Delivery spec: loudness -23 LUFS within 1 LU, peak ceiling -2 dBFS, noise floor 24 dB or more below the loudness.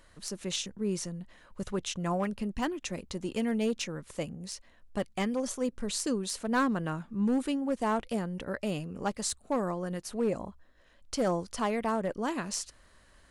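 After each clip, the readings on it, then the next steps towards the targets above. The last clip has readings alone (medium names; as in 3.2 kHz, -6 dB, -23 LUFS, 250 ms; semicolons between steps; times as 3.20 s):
clipped samples 0.7%; clipping level -22.0 dBFS; loudness -33.0 LUFS; peak level -22.0 dBFS; loudness target -23.0 LUFS
-> clip repair -22 dBFS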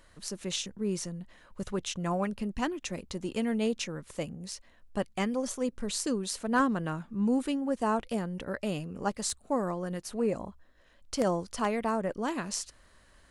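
clipped samples 0.0%; loudness -32.5 LUFS; peak level -13.0 dBFS; loudness target -23.0 LUFS
-> trim +9.5 dB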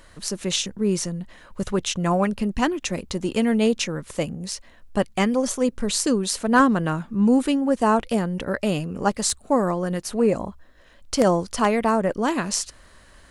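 loudness -23.0 LUFS; peak level -3.5 dBFS; noise floor -51 dBFS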